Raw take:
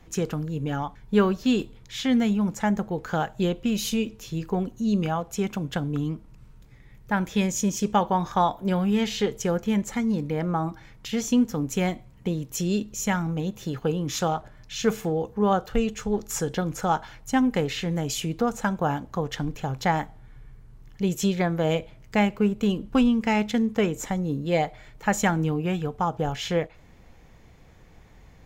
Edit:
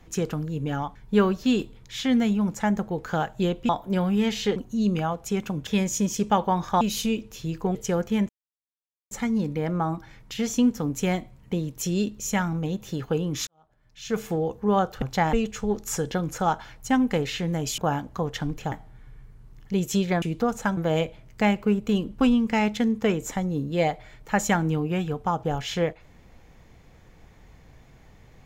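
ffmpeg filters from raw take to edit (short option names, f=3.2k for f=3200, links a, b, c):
-filter_complex "[0:a]asplit=14[a][b][c][d][e][f][g][h][i][j][k][l][m][n];[a]atrim=end=3.692[o];[b]atrim=start=8.438:end=9.312[p];[c]atrim=start=4.628:end=5.742[q];[d]atrim=start=7.298:end=8.442[r];[e]atrim=start=3.688:end=4.632[s];[f]atrim=start=9.308:end=9.85,asetpts=PTS-STARTPTS,afade=t=out:st=0.538:d=0.004:c=hsin,apad=pad_dur=0.82[t];[g]atrim=start=9.85:end=14.21,asetpts=PTS-STARTPTS,afade=t=in:d=0.004:c=hsin,afade=t=out:st=4.356:d=0.004:c=hsin[u];[h]atrim=start=14.21:end=15.762,asetpts=PTS-STARTPTS,afade=t=in:d=0.85:c=qua[v];[i]atrim=start=19.698:end=20.012[w];[j]atrim=start=15.758:end=18.212[x];[k]atrim=start=18.758:end=19.702[y];[l]atrim=start=20.008:end=21.512[z];[m]atrim=start=18.208:end=18.762[aa];[n]atrim=start=21.508[ab];[o][p]acrossfade=d=0.004:c1=hsin:c2=hsin[ac];[ac][q]acrossfade=d=0.004:c1=hsin:c2=hsin[ad];[ad][r]acrossfade=d=0.004:c1=hsin:c2=hsin[ae];[ae][s]acrossfade=d=0.004:c1=hsin:c2=hsin[af];[t][u][v]concat=n=3:v=0:a=1[ag];[af][ag]acrossfade=d=0.004:c1=hsin:c2=hsin[ah];[ah][w]acrossfade=d=0.004:c1=hsin:c2=hsin[ai];[ai][x]acrossfade=d=0.004:c1=hsin:c2=hsin[aj];[aj][y]acrossfade=d=0.004:c1=hsin:c2=hsin[ak];[ak][z]acrossfade=d=0.004:c1=hsin:c2=hsin[al];[al][aa]acrossfade=d=0.004:c1=hsin:c2=hsin[am];[am][ab]acrossfade=d=0.004:c1=hsin:c2=hsin"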